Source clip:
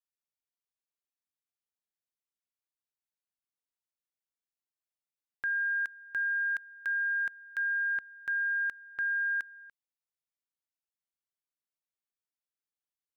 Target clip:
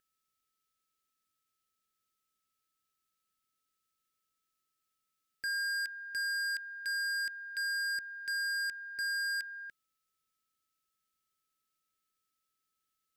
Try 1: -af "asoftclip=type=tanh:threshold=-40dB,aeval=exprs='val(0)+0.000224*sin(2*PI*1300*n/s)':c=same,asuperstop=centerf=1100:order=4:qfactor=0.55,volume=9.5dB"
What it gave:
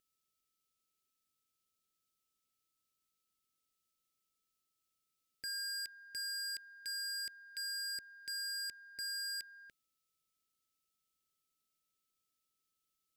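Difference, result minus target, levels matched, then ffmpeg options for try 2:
2000 Hz band -6.0 dB
-af "asoftclip=type=tanh:threshold=-40dB,aeval=exprs='val(0)+0.000224*sin(2*PI*1300*n/s)':c=same,asuperstop=centerf=1100:order=4:qfactor=0.55,equalizer=f=1.6k:t=o:w=0.57:g=12,volume=9.5dB"

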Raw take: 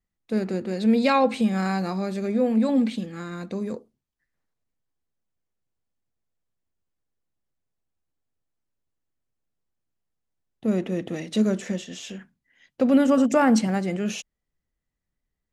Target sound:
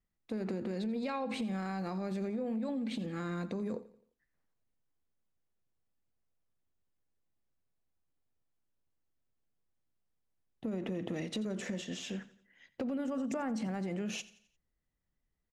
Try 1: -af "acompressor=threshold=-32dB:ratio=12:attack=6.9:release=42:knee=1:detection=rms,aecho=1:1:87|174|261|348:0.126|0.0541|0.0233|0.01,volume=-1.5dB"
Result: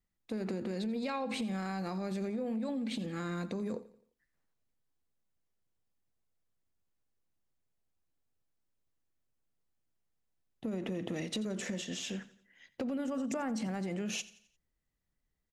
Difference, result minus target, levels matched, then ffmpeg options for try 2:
8000 Hz band +4.5 dB
-af "acompressor=threshold=-32dB:ratio=12:attack=6.9:release=42:knee=1:detection=rms,highshelf=f=3.4k:g=-6,aecho=1:1:87|174|261|348:0.126|0.0541|0.0233|0.01,volume=-1.5dB"

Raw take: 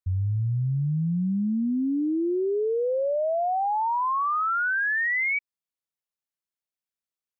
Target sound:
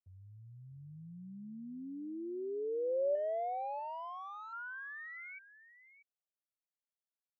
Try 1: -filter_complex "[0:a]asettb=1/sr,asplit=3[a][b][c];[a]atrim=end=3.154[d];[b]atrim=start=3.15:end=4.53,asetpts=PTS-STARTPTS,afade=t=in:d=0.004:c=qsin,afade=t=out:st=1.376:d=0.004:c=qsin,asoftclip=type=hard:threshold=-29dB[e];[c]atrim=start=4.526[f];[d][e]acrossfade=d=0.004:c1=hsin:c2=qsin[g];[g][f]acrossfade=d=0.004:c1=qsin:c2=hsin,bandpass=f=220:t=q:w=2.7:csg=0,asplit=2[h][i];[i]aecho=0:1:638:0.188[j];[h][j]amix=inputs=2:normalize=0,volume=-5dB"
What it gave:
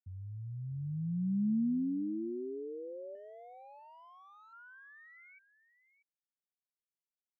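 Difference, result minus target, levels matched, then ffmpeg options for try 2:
500 Hz band -11.5 dB
-filter_complex "[0:a]asettb=1/sr,asplit=3[a][b][c];[a]atrim=end=3.154[d];[b]atrim=start=3.15:end=4.53,asetpts=PTS-STARTPTS,afade=t=in:d=0.004:c=qsin,afade=t=out:st=1.376:d=0.004:c=qsin,asoftclip=type=hard:threshold=-29dB[e];[c]atrim=start=4.526[f];[d][e]acrossfade=d=0.004:c1=hsin:c2=qsin[g];[g][f]acrossfade=d=0.004:c1=qsin:c2=hsin,bandpass=f=630:t=q:w=2.7:csg=0,asplit=2[h][i];[i]aecho=0:1:638:0.188[j];[h][j]amix=inputs=2:normalize=0,volume=-5dB"

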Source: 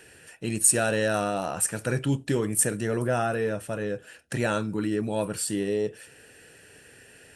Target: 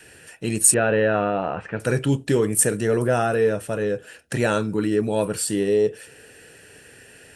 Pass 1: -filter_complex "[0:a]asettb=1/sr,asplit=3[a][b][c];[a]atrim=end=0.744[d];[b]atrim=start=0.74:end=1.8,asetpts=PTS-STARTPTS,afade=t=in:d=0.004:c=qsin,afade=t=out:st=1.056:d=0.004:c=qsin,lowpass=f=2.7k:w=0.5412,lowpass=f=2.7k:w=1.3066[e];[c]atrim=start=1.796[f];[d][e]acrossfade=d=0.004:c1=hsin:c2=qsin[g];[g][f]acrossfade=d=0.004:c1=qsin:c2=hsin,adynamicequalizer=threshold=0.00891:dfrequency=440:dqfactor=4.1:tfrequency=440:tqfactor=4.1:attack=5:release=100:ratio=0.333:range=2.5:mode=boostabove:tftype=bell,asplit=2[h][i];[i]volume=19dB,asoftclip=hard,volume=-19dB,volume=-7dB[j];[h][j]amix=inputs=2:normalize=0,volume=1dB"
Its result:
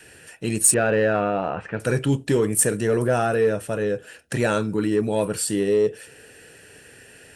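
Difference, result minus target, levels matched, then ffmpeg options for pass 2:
overloaded stage: distortion +21 dB
-filter_complex "[0:a]asettb=1/sr,asplit=3[a][b][c];[a]atrim=end=0.744[d];[b]atrim=start=0.74:end=1.8,asetpts=PTS-STARTPTS,afade=t=in:d=0.004:c=qsin,afade=t=out:st=1.056:d=0.004:c=qsin,lowpass=f=2.7k:w=0.5412,lowpass=f=2.7k:w=1.3066[e];[c]atrim=start=1.796[f];[d][e]acrossfade=d=0.004:c1=hsin:c2=qsin[g];[g][f]acrossfade=d=0.004:c1=qsin:c2=hsin,adynamicequalizer=threshold=0.00891:dfrequency=440:dqfactor=4.1:tfrequency=440:tqfactor=4.1:attack=5:release=100:ratio=0.333:range=2.5:mode=boostabove:tftype=bell,asplit=2[h][i];[i]volume=8.5dB,asoftclip=hard,volume=-8.5dB,volume=-7dB[j];[h][j]amix=inputs=2:normalize=0,volume=1dB"

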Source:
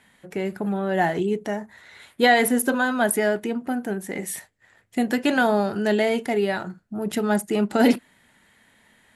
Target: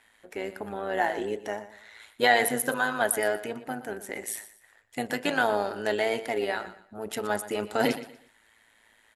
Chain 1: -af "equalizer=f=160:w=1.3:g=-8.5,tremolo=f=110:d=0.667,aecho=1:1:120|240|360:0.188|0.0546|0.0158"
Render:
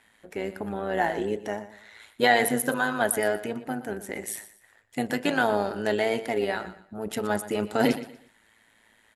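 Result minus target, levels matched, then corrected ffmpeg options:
125 Hz band +4.5 dB
-af "equalizer=f=160:w=1.3:g=-19.5,tremolo=f=110:d=0.667,aecho=1:1:120|240|360:0.188|0.0546|0.0158"

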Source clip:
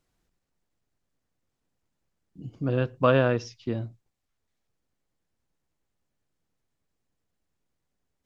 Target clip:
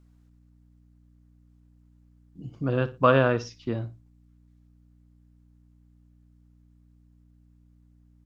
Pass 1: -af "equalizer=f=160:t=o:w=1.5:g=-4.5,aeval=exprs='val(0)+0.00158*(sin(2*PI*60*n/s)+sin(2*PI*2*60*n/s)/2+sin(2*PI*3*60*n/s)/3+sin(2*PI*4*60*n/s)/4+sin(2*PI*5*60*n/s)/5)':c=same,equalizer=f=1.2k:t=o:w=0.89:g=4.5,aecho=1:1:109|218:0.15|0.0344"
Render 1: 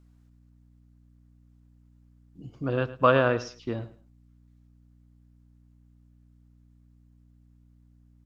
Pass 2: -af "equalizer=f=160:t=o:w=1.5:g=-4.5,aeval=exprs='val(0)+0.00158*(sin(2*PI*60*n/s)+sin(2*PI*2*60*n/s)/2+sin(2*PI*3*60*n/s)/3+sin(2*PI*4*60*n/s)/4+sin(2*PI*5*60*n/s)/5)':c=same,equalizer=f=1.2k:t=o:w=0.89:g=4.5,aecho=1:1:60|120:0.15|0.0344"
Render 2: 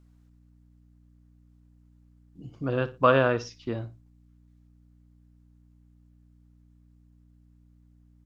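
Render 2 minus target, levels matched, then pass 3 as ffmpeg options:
125 Hz band -3.0 dB
-af "aeval=exprs='val(0)+0.00158*(sin(2*PI*60*n/s)+sin(2*PI*2*60*n/s)/2+sin(2*PI*3*60*n/s)/3+sin(2*PI*4*60*n/s)/4+sin(2*PI*5*60*n/s)/5)':c=same,equalizer=f=1.2k:t=o:w=0.89:g=4.5,aecho=1:1:60|120:0.15|0.0344"

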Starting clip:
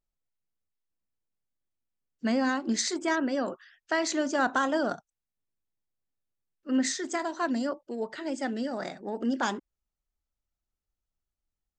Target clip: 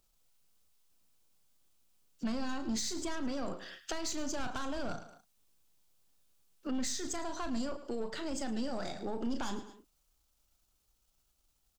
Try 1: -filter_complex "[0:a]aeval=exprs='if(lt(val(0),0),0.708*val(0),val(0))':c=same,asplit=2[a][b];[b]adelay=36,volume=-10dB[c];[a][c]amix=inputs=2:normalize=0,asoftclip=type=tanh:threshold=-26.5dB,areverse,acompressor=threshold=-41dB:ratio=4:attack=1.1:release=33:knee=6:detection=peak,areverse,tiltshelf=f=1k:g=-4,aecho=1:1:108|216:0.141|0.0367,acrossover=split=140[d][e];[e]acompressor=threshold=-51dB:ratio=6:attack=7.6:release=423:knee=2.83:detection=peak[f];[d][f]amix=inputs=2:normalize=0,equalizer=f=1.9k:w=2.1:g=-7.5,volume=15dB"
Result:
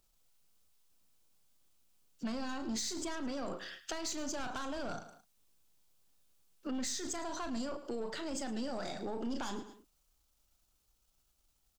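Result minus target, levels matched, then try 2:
compressor: peak gain reduction +6.5 dB
-filter_complex "[0:a]aeval=exprs='if(lt(val(0),0),0.708*val(0),val(0))':c=same,asplit=2[a][b];[b]adelay=36,volume=-10dB[c];[a][c]amix=inputs=2:normalize=0,asoftclip=type=tanh:threshold=-26.5dB,areverse,acompressor=threshold=-32dB:ratio=4:attack=1.1:release=33:knee=6:detection=peak,areverse,tiltshelf=f=1k:g=-4,aecho=1:1:108|216:0.141|0.0367,acrossover=split=140[d][e];[e]acompressor=threshold=-51dB:ratio=6:attack=7.6:release=423:knee=2.83:detection=peak[f];[d][f]amix=inputs=2:normalize=0,equalizer=f=1.9k:w=2.1:g=-7.5,volume=15dB"

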